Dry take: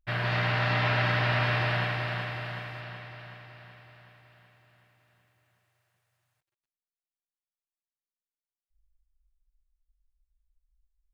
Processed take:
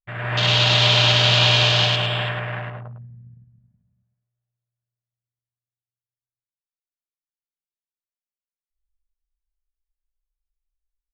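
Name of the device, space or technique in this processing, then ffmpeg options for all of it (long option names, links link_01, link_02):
voice memo with heavy noise removal: -filter_complex "[0:a]afwtdn=0.0141,asettb=1/sr,asplit=3[link_01][link_02][link_03];[link_01]atrim=end=0.374[link_04];[link_02]atrim=start=0.37:end=2.19,asetpts=PTS-STARTPTS,afade=type=in:duration=0.004:curve=qsin,afade=type=out:start_time=1.816:duration=0.004:curve=qsin,highshelf=frequency=2500:width_type=q:width=3:gain=9.5[link_05];[link_03]atrim=start=2.186[link_06];[link_04][link_05]acrossfade=duration=0.004:curve1=hsin:curve2=qsin[link_07];[link_07][link_06]acrossfade=duration=0.004:curve1=qsin:curve2=hsin,anlmdn=0.158,dynaudnorm=framelen=130:gausssize=5:maxgain=8dB,aecho=1:1:102|207:0.891|0.282,volume=-2dB"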